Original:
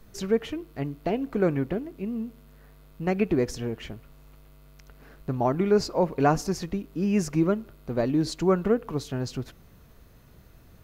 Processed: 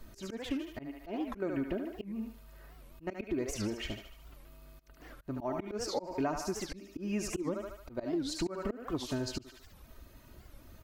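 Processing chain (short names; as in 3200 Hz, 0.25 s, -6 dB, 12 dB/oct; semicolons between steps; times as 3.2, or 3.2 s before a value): reverb removal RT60 0.69 s; on a send: thinning echo 74 ms, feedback 54%, high-pass 550 Hz, level -6 dB; on the sum: auto swell 0.27 s; comb 3.2 ms, depth 53%; compressor 5:1, threshold -31 dBFS, peak gain reduction 13.5 dB; record warp 78 rpm, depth 250 cents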